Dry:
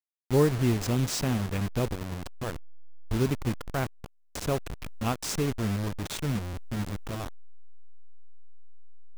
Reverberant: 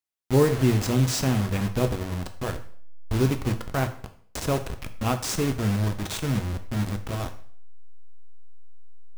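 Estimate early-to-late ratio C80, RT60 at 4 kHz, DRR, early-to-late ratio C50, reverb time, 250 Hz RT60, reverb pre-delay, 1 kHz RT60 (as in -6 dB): 16.0 dB, 0.50 s, 6.5 dB, 12.5 dB, 0.55 s, 0.55 s, 4 ms, 0.55 s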